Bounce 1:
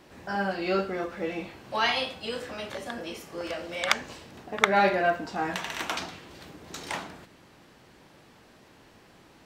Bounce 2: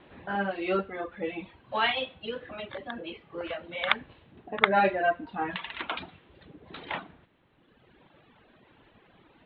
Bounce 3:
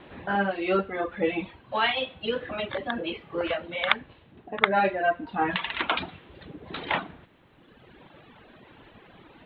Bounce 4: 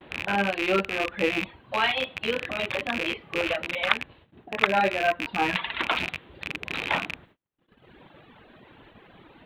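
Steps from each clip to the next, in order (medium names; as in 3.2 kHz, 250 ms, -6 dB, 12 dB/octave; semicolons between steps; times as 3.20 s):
steep low-pass 3.8 kHz 72 dB/octave; reverb removal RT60 1.8 s
gain riding within 4 dB 0.5 s; trim +3.5 dB
rattle on loud lows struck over -44 dBFS, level -16 dBFS; gate -53 dBFS, range -35 dB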